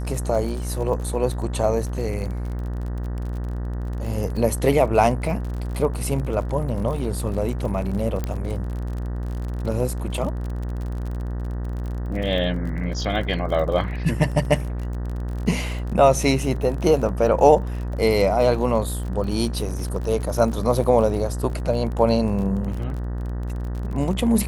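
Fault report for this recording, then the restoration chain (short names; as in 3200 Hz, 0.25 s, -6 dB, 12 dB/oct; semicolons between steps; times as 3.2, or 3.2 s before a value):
buzz 60 Hz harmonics 32 -27 dBFS
crackle 38/s -30 dBFS
8.24 pop -13 dBFS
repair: de-click; de-hum 60 Hz, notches 32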